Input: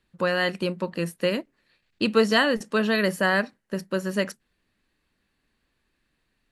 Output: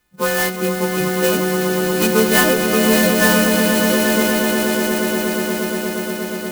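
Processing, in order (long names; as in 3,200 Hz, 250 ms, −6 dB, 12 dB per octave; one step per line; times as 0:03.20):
every partial snapped to a pitch grid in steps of 3 semitones
in parallel at −2.5 dB: brickwall limiter −12.5 dBFS, peak gain reduction 8 dB
on the sum: Bessel low-pass filter 3,500 Hz, order 2
echo that builds up and dies away 119 ms, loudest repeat 8, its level −7.5 dB
converter with an unsteady clock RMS 0.062 ms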